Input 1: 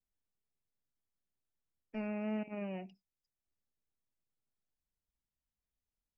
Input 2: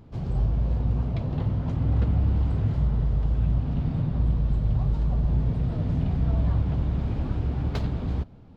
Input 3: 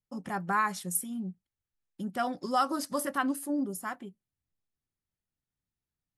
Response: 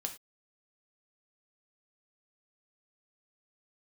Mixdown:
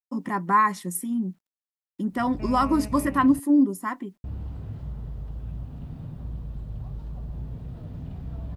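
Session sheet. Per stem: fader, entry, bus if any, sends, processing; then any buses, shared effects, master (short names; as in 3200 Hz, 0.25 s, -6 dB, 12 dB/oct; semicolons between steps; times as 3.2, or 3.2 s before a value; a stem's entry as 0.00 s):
-0.5 dB, 0.45 s, no send, dry
-11.5 dB, 2.05 s, muted 3.4–4.24, no send, notch 2200 Hz, Q 20
-1.0 dB, 0.00 s, no send, HPF 47 Hz 6 dB/oct; small resonant body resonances 280/1000/1900 Hz, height 14 dB, ringing for 20 ms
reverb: off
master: requantised 12-bit, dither none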